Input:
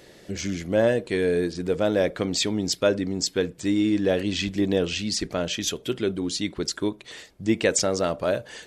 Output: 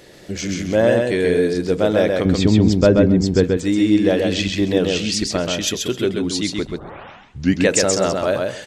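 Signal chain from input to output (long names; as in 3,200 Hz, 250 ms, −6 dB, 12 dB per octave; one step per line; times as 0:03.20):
0:02.25–0:03.44: RIAA equalisation playback
0:06.65: tape start 1.01 s
repeating echo 132 ms, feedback 16%, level −3.5 dB
level +4.5 dB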